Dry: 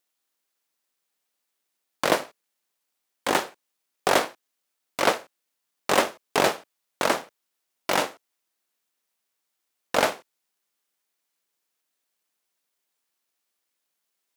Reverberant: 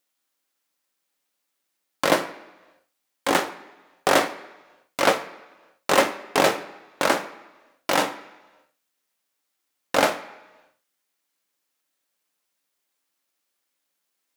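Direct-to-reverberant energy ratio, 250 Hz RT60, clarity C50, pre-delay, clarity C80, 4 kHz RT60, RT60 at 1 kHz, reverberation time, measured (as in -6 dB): 6.0 dB, 1.0 s, 13.0 dB, 3 ms, 15.5 dB, 1.2 s, 1.2 s, 1.2 s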